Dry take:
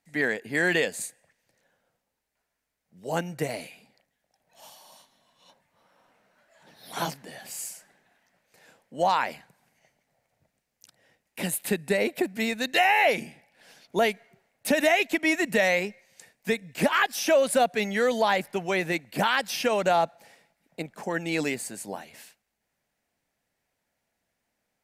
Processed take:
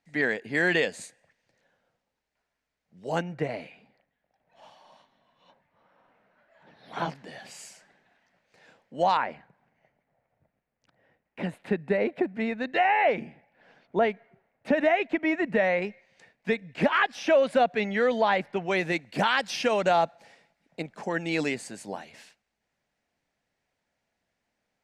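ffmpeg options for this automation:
-af "asetnsamples=n=441:p=0,asendcmd='3.22 lowpass f 2500;7.15 lowpass f 4800;9.17 lowpass f 1800;15.82 lowpass f 3100;18.71 lowpass f 6100',lowpass=5.4k"

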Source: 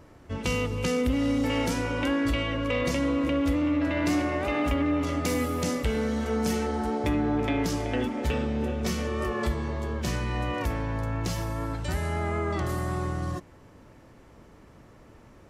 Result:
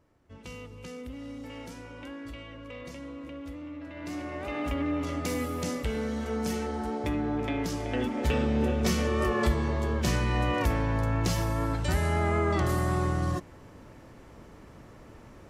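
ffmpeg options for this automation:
-af "volume=2.5dB,afade=t=in:st=3.93:d=0.92:silence=0.266073,afade=t=in:st=7.78:d=0.79:silence=0.473151"

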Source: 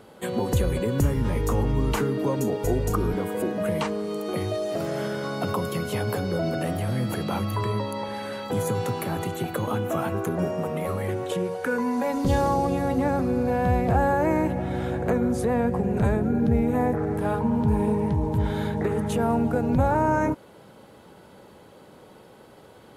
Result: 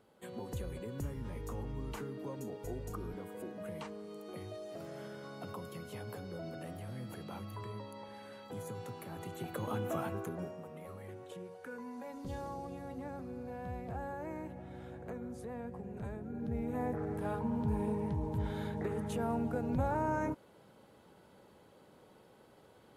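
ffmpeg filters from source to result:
-af "volume=-0.5dB,afade=t=in:st=9.1:d=0.78:silence=0.375837,afade=t=out:st=9.88:d=0.73:silence=0.281838,afade=t=in:st=16.26:d=0.74:silence=0.375837"

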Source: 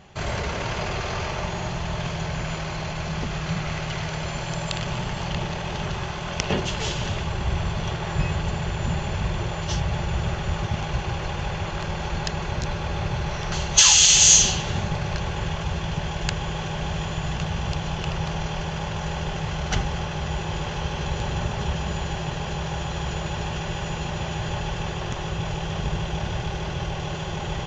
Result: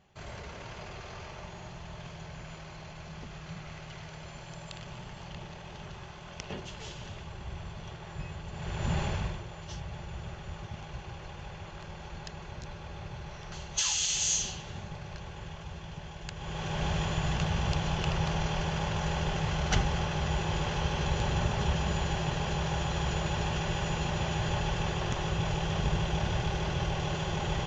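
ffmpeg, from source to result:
-af "volume=9.5dB,afade=t=in:st=8.51:d=0.51:silence=0.237137,afade=t=out:st=9.02:d=0.4:silence=0.251189,afade=t=in:st=16.34:d=0.51:silence=0.237137"

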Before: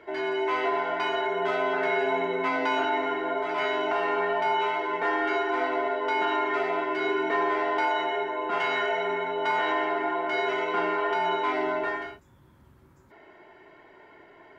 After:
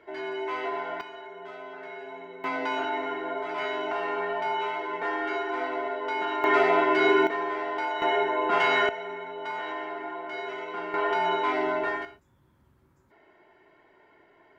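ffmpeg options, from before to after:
-af "asetnsamples=n=441:p=0,asendcmd='1.01 volume volume -15dB;2.44 volume volume -3.5dB;6.44 volume volume 6dB;7.27 volume volume -4.5dB;8.02 volume volume 4dB;8.89 volume volume -8dB;10.94 volume volume 0.5dB;12.05 volume volume -7dB',volume=-5dB"

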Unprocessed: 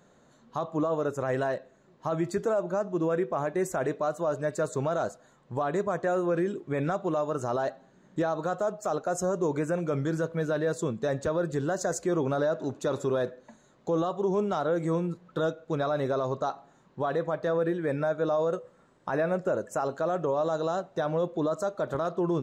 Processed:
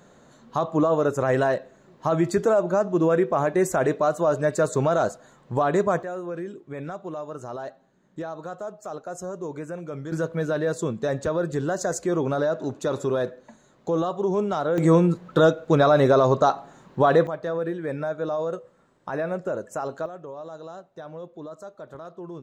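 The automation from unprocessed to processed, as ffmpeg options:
-af "asetnsamples=n=441:p=0,asendcmd='6.03 volume volume -5.5dB;10.12 volume volume 3dB;14.78 volume volume 11dB;17.27 volume volume -0.5dB;20.06 volume volume -10.5dB',volume=7dB"

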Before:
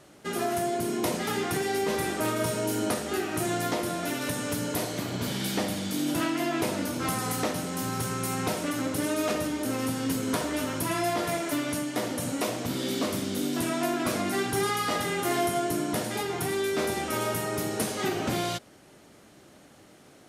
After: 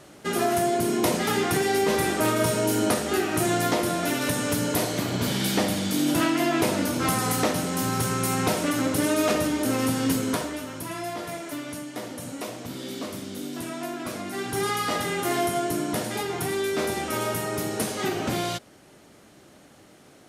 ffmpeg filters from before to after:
-af "volume=11.5dB,afade=t=out:st=10.1:d=0.51:silence=0.316228,afade=t=in:st=14.31:d=0.4:silence=0.473151"

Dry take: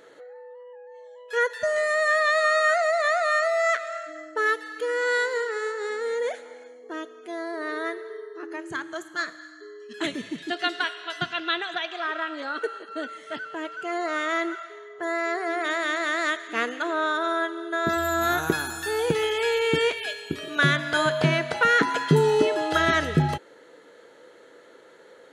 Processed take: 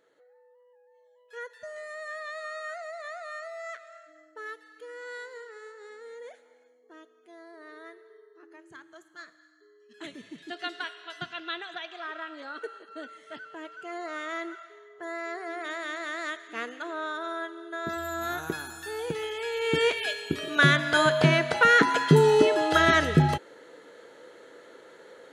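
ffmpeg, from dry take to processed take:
-af "volume=1dB,afade=t=in:st=9.79:d=0.86:silence=0.398107,afade=t=in:st=19.52:d=0.46:silence=0.334965"

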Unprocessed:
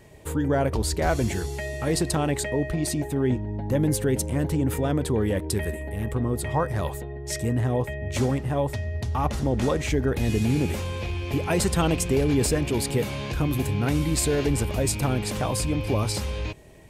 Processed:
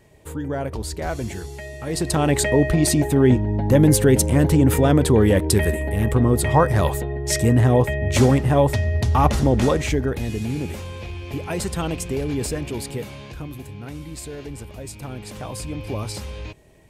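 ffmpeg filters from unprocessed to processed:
-af "volume=16dB,afade=t=in:st=1.88:d=0.59:silence=0.251189,afade=t=out:st=9.22:d=1.08:silence=0.266073,afade=t=out:st=12.66:d=0.96:silence=0.398107,afade=t=in:st=14.91:d=1.03:silence=0.421697"

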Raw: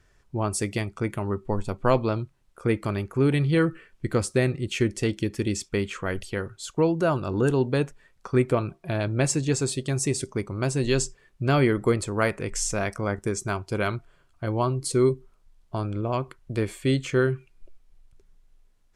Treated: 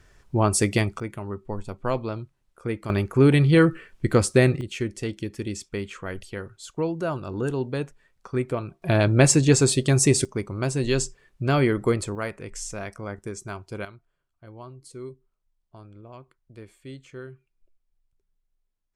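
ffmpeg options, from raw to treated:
-af "asetnsamples=n=441:p=0,asendcmd='1 volume volume -5dB;2.9 volume volume 5dB;4.61 volume volume -4.5dB;8.82 volume volume 7dB;10.25 volume volume 0dB;12.15 volume volume -7dB;13.85 volume volume -17.5dB',volume=6dB"

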